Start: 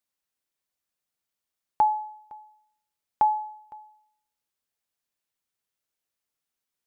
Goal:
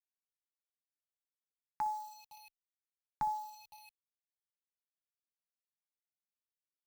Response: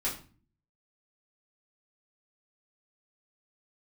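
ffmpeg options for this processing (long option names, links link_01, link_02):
-filter_complex "[0:a]asettb=1/sr,asplit=3[link_01][link_02][link_03];[link_01]atrim=end=2.344[link_04];[link_02]atrim=start=2.34:end=3.67,asetpts=PTS-STARTPTS,afade=type=in:duration=0.004:curve=qsin,afade=type=out:start_time=1.326:duration=0.004:curve=qsin,bass=frequency=250:gain=9,treble=frequency=4000:gain=2[link_05];[link_03]atrim=start=3.666[link_06];[link_04][link_05]acrossfade=duration=0.004:curve1=hsin:curve2=qsin[link_07];[link_07][link_06]acrossfade=duration=0.004:curve1=qsin:curve2=hsin,aecho=1:1:13|61:0.266|0.168,agate=range=-33dB:threshold=-48dB:ratio=3:detection=peak,acrusher=bits=7:mix=0:aa=0.000001,equalizer=frequency=540:width_type=o:width=2.1:gain=-14.5,asplit=2[link_08][link_09];[link_09]afreqshift=-0.74[link_10];[link_08][link_10]amix=inputs=2:normalize=1,volume=-3.5dB"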